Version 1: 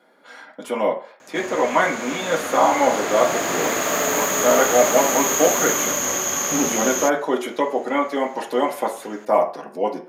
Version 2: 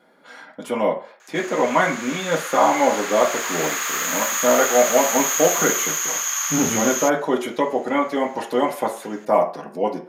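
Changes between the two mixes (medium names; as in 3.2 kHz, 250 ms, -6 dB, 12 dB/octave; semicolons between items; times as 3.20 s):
background: add high-pass 1.1 kHz 24 dB/octave; master: remove high-pass 230 Hz 12 dB/octave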